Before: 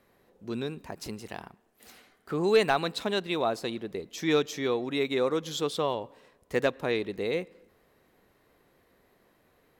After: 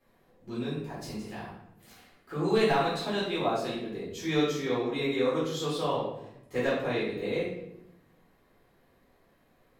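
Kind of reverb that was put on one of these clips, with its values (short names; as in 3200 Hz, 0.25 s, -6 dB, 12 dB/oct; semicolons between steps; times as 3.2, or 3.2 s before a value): shoebox room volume 220 m³, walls mixed, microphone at 3.9 m; gain -12.5 dB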